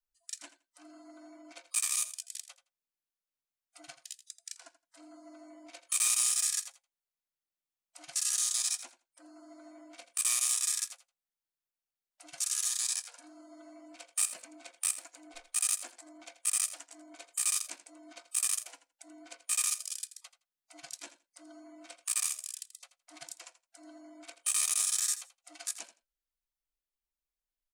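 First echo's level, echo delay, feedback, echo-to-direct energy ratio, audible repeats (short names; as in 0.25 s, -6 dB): -14.0 dB, 83 ms, 15%, -14.0 dB, 2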